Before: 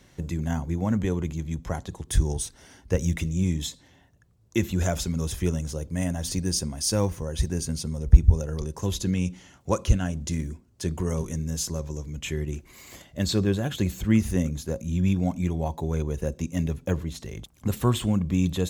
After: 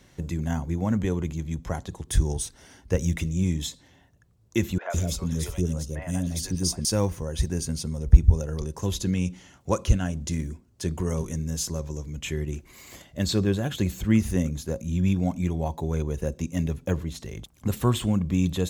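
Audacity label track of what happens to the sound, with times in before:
4.780000	6.850000	three bands offset in time mids, highs, lows 0.12/0.16 s, splits 540/2500 Hz

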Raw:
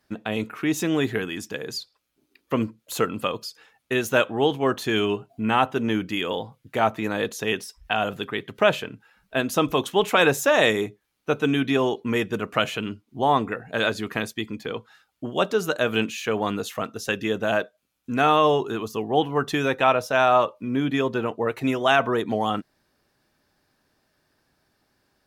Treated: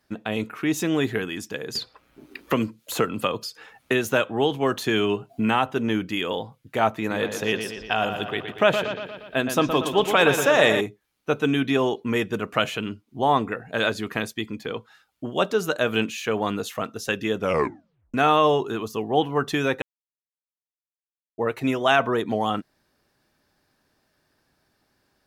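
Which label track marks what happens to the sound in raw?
1.750000	5.690000	three-band squash depth 70%
6.980000	10.810000	analogue delay 0.118 s, stages 4096, feedback 59%, level -8 dB
17.380000	17.380000	tape stop 0.76 s
19.820000	21.380000	mute

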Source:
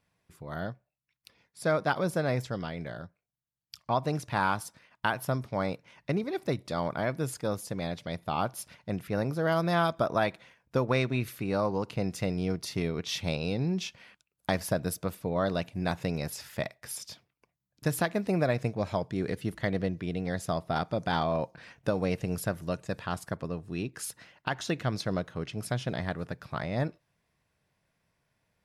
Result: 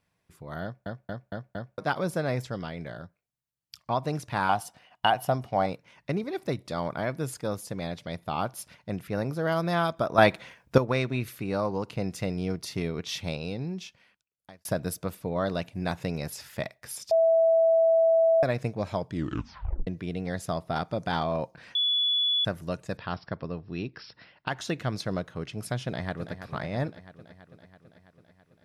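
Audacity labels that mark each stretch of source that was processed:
0.630000	0.630000	stutter in place 0.23 s, 5 plays
4.490000	5.660000	small resonant body resonances 740/2900 Hz, height 16 dB, ringing for 35 ms
10.180000	10.780000	gain +9 dB
13.030000	14.650000	fade out
17.110000	18.430000	bleep 656 Hz -17.5 dBFS
19.090000	19.090000	tape stop 0.78 s
21.750000	22.450000	bleep 3420 Hz -22 dBFS
22.970000	24.480000	brick-wall FIR low-pass 5700 Hz
25.840000	26.400000	echo throw 0.33 s, feedback 70%, level -10.5 dB

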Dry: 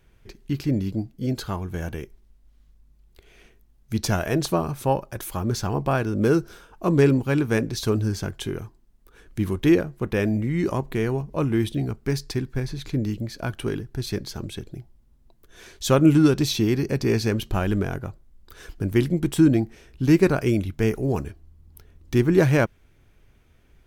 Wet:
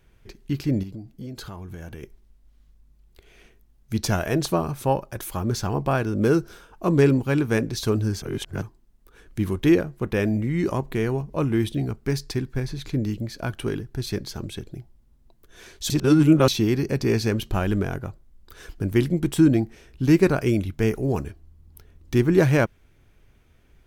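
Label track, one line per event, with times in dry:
0.830000	2.030000	compressor 5:1, threshold -33 dBFS
8.220000	8.620000	reverse
15.900000	16.480000	reverse

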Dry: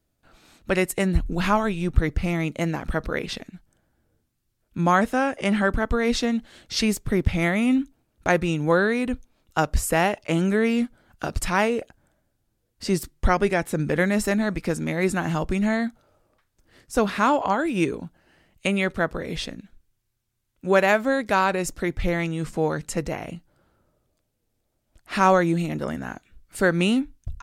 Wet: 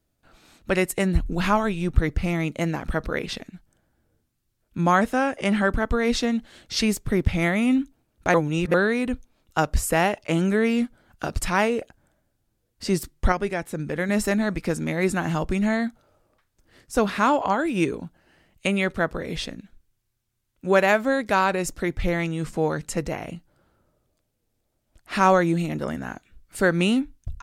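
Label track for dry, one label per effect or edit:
8.340000	8.740000	reverse
13.320000	14.090000	gain -5 dB

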